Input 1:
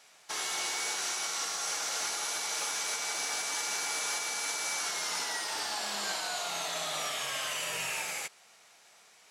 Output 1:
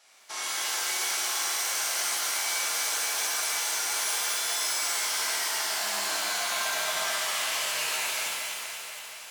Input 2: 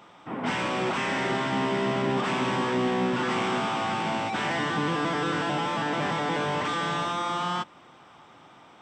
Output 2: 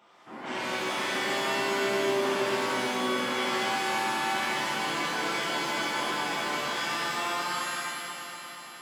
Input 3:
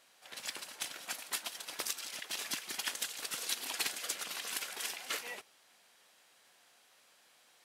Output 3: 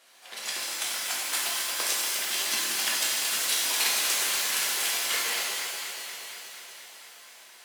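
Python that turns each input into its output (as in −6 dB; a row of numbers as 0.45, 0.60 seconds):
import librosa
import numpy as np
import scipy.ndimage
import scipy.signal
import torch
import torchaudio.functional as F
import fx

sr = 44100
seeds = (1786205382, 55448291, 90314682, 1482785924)

y = fx.highpass(x, sr, hz=330.0, slope=6)
y = fx.echo_alternate(y, sr, ms=119, hz=1100.0, feedback_pct=86, wet_db=-6.5)
y = fx.rev_shimmer(y, sr, seeds[0], rt60_s=1.2, semitones=7, shimmer_db=-2, drr_db=-3.0)
y = y * 10.0 ** (-30 / 20.0) / np.sqrt(np.mean(np.square(y)))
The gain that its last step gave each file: −3.0, −9.5, +4.5 decibels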